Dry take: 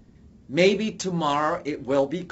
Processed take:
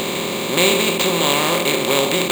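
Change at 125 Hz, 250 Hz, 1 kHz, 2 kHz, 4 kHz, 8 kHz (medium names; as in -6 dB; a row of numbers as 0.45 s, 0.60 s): +4.0 dB, +4.0 dB, +5.0 dB, +11.0 dB, +15.5 dB, no reading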